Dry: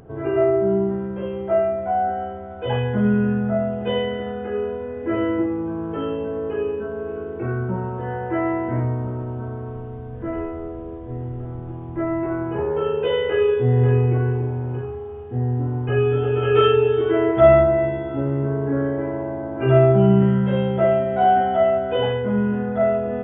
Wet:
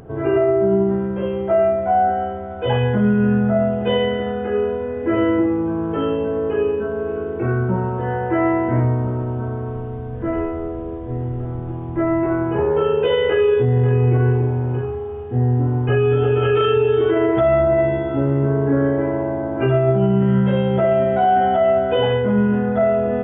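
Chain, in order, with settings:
brickwall limiter −14 dBFS, peak gain reduction 11.5 dB
level +5 dB

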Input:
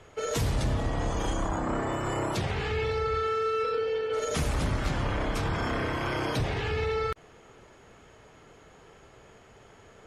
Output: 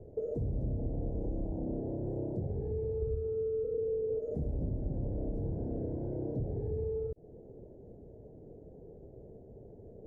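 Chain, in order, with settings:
0:03.02–0:04.19: spectral tilt −2.5 dB per octave
downward compressor 6 to 1, threshold −36 dBFS, peak gain reduction 14.5 dB
inverse Chebyshev low-pass filter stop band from 1,100 Hz, stop band 40 dB
level +5 dB

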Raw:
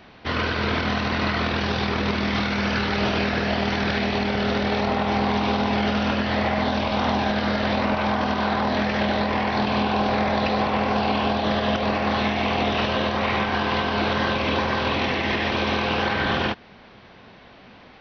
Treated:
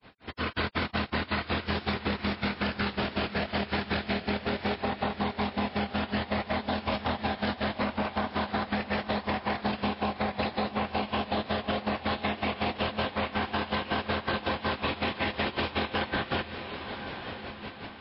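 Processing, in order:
granular cloud 144 ms, grains 5.4 per second, pitch spread up and down by 0 semitones
brickwall limiter −22.5 dBFS, peak gain reduction 10.5 dB
automatic gain control gain up to 12.5 dB
feedback delay with all-pass diffusion 928 ms, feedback 41%, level −15 dB
downward compressor 5 to 1, threshold −23 dBFS, peak gain reduction 8 dB
level −3 dB
MP3 24 kbit/s 12,000 Hz

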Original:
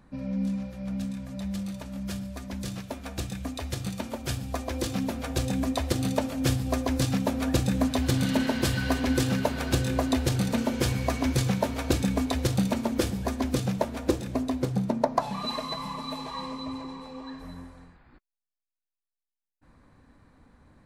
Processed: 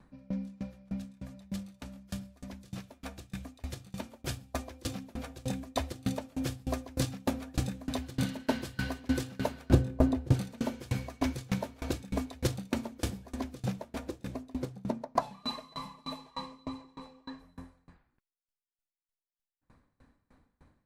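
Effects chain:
0:09.70–0:10.34: tilt shelving filter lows +8.5 dB, about 1,200 Hz
tremolo with a ramp in dB decaying 3.3 Hz, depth 28 dB

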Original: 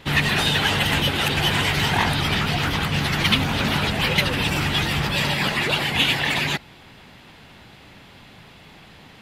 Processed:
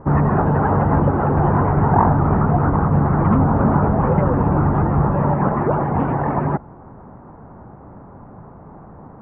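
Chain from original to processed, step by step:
Butterworth low-pass 1,200 Hz 36 dB per octave
level +8.5 dB

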